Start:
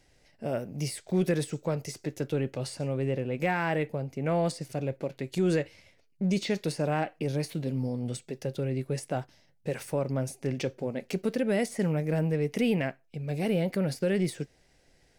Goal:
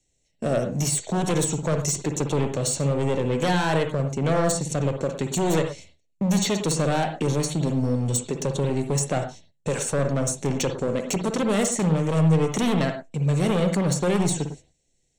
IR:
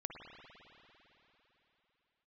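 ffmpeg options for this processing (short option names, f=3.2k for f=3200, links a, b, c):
-filter_complex "[0:a]agate=range=-21dB:threshold=-52dB:ratio=16:detection=peak,asplit=2[a][b];[b]acompressor=threshold=-36dB:ratio=6,volume=-1dB[c];[a][c]amix=inputs=2:normalize=0,lowpass=f=7.5k:t=q:w=5.2,aeval=exprs='0.188*sin(PI/2*2.24*val(0)/0.188)':c=same,acrossover=split=110|2100[d][e][f];[e]adynamicsmooth=sensitivity=3:basefreq=660[g];[f]asuperstop=centerf=4900:order=8:qfactor=6.9[h];[d][g][h]amix=inputs=3:normalize=0[i];[1:a]atrim=start_sample=2205,afade=t=out:st=0.16:d=0.01,atrim=end_sample=7497[j];[i][j]afir=irnorm=-1:irlink=0"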